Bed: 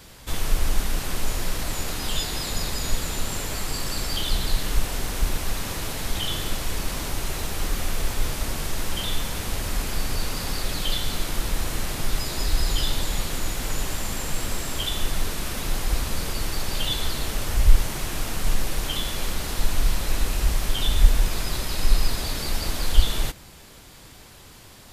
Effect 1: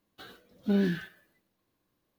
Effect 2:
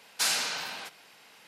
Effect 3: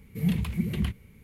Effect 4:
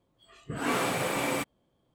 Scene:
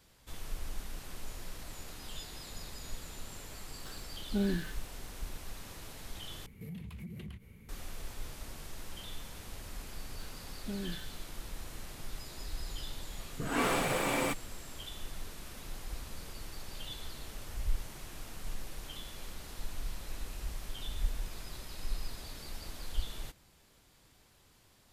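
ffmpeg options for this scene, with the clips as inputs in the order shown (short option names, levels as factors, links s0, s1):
-filter_complex "[1:a]asplit=2[s0][s1];[0:a]volume=0.133[s2];[3:a]acompressor=threshold=0.01:ratio=6:attack=3.2:release=140:knee=1:detection=peak[s3];[s1]alimiter=limit=0.0841:level=0:latency=1:release=71[s4];[s2]asplit=2[s5][s6];[s5]atrim=end=6.464[s7];[s3]atrim=end=1.23,asetpts=PTS-STARTPTS,volume=0.794[s8];[s6]atrim=start=7.686[s9];[s0]atrim=end=2.18,asetpts=PTS-STARTPTS,volume=0.531,afade=t=in:d=0.004:c=hsin,afade=t=out:st=2.176:d=0.004:c=hsin,adelay=3660[s10];[s4]atrim=end=2.18,asetpts=PTS-STARTPTS,volume=0.299,afade=t=in:d=0.004:c=hsin,afade=t=out:st=2.176:d=0.004:c=hsin,adelay=10000[s11];[4:a]atrim=end=1.94,asetpts=PTS-STARTPTS,volume=0.794,afade=t=in:d=0.004:c=hsin,afade=t=out:st=1.936:d=0.004:c=hsin,adelay=12900[s12];[s7][s8]acrossfade=d=0.004:c1=hsin:c2=hsin[s13];[s13][s9]acrossfade=d=0.004:c1=hsin:c2=hsin[s14];[s14][s10][s11][s12]amix=inputs=4:normalize=0"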